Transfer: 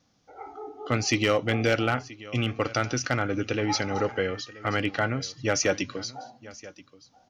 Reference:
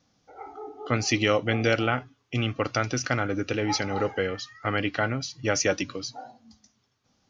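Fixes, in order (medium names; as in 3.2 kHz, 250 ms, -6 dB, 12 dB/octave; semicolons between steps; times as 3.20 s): clip repair -14 dBFS; inverse comb 980 ms -19.5 dB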